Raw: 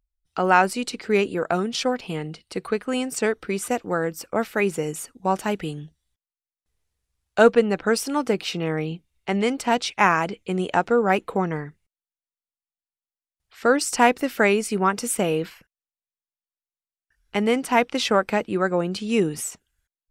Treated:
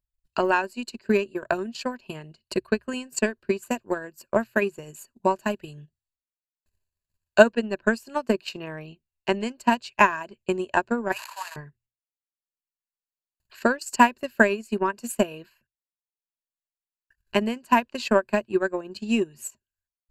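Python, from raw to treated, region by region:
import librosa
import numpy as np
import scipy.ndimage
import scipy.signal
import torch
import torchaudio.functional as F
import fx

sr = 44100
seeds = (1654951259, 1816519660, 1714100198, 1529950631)

y = fx.chain(x, sr, fx.delta_mod(bps=64000, step_db=-24.5),
    fx.steep_highpass(hz=810.0, slope=36),
    fx.sustainer(db_per_s=46.0), at=(11.12, 11.56))
y = fx.ripple_eq(y, sr, per_octave=1.4, db=12)
y = fx.transient(y, sr, attack_db=12, sustain_db=-10)
y = fx.hum_notches(y, sr, base_hz=60, count=2)
y = y * librosa.db_to_amplitude(-10.0)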